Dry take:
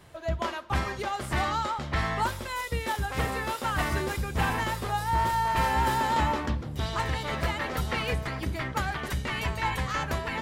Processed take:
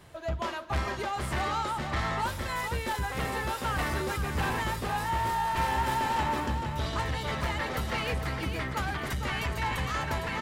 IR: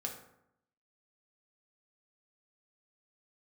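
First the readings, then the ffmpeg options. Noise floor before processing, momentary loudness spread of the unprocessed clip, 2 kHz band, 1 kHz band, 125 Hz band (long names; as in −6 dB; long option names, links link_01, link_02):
−38 dBFS, 6 LU, −1.5 dB, −2.0 dB, −2.0 dB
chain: -af "asoftclip=type=tanh:threshold=-24.5dB,aecho=1:1:458:0.447"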